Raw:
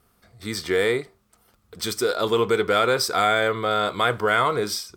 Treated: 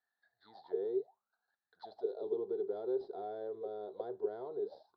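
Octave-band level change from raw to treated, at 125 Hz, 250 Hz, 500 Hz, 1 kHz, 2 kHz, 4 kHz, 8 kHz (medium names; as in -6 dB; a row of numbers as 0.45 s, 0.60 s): under -30 dB, -16.0 dB, -14.0 dB, -26.0 dB, under -40 dB, under -35 dB, under -40 dB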